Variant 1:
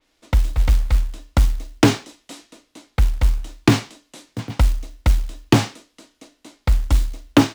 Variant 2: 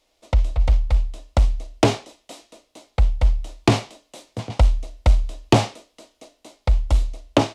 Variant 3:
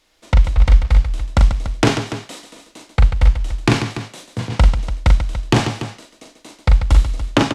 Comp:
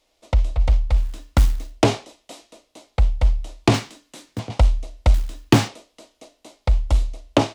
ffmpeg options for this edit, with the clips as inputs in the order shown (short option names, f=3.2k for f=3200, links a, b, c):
-filter_complex "[0:a]asplit=3[a][b][c];[1:a]asplit=4[d][e][f][g];[d]atrim=end=1.11[h];[a]atrim=start=0.95:end=1.81[i];[e]atrim=start=1.65:end=3.742[j];[b]atrim=start=3.738:end=4.392[k];[f]atrim=start=4.388:end=5.142[l];[c]atrim=start=5.138:end=5.682[m];[g]atrim=start=5.678[n];[h][i]acrossfade=d=0.16:c1=tri:c2=tri[o];[o][j]acrossfade=d=0.16:c1=tri:c2=tri[p];[p][k]acrossfade=d=0.004:c1=hsin:c2=hsin[q];[q][l]acrossfade=d=0.004:c1=hsin:c2=hsin[r];[r][m]acrossfade=d=0.004:c1=hsin:c2=hsin[s];[s][n]acrossfade=d=0.004:c1=hsin:c2=hsin"